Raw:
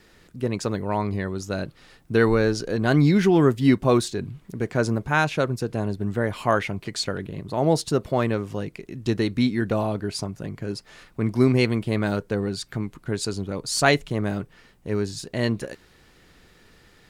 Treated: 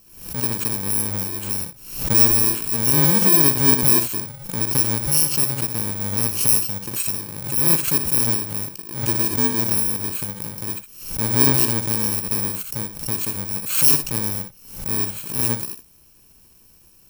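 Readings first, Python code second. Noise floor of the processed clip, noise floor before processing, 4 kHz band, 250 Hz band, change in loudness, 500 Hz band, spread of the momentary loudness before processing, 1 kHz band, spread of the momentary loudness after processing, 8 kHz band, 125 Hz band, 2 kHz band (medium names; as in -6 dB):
-52 dBFS, -56 dBFS, +4.5 dB, -4.0 dB, +6.5 dB, -8.0 dB, 13 LU, -3.5 dB, 14 LU, +16.0 dB, -1.5 dB, -3.5 dB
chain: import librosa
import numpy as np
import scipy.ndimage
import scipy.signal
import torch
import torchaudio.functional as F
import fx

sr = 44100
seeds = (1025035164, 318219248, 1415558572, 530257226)

p1 = fx.bit_reversed(x, sr, seeds[0], block=64)
p2 = fx.high_shelf(p1, sr, hz=7000.0, db=7.0)
p3 = p2 + fx.room_early_taps(p2, sr, ms=(61, 77), db=(-9.5, -15.5), dry=0)
p4 = fx.pre_swell(p3, sr, db_per_s=84.0)
y = p4 * 10.0 ** (-2.5 / 20.0)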